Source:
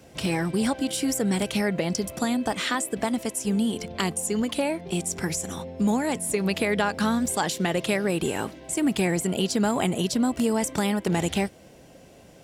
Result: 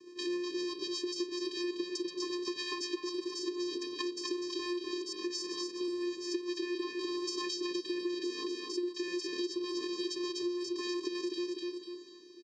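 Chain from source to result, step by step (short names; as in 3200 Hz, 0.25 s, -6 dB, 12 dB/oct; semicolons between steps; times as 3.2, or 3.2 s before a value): in parallel at -5 dB: wrapped overs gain 26.5 dB; on the sum: rotary speaker horn 8 Hz, later 1.1 Hz, at 3.8; vocoder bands 8, square 353 Hz; bell 4900 Hz +13.5 dB 0.94 oct; feedback echo 0.248 s, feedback 39%, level -5 dB; compressor 6:1, threshold -30 dBFS, peak gain reduction 12.5 dB; gain -2.5 dB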